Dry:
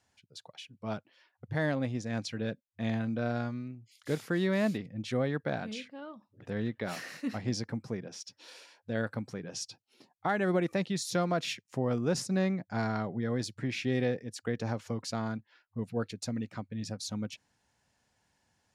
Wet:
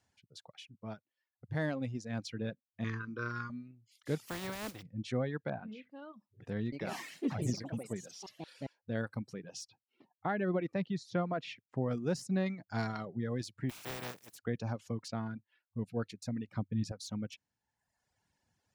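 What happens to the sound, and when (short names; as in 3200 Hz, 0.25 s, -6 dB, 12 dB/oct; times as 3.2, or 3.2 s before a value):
0.71–1.62 dip -12.5 dB, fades 0.36 s
2.84–3.5 EQ curve 100 Hz 0 dB, 190 Hz -8 dB, 420 Hz +5 dB, 710 Hz -24 dB, 1100 Hz +13 dB, 2600 Hz 0 dB, 3900 Hz -4 dB, 5700 Hz +9 dB, 12000 Hz -27 dB
4.25–4.81 spectral contrast lowered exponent 0.25
5.5–5.9 LPF 1800 Hz
6.64–8.95 echoes that change speed 83 ms, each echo +3 st, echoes 3
9.69–11.85 Bessel low-pass 2600 Hz
12.46–13.05 high shelf 2200 Hz +7.5 dB
13.69–14.37 spectral contrast lowered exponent 0.16
15.08–15.86 air absorption 110 m
16.48–16.92 low shelf 450 Hz +7 dB
whole clip: de-esser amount 85%; reverb removal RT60 1.1 s; bell 110 Hz +4 dB 2.8 oct; gain -4.5 dB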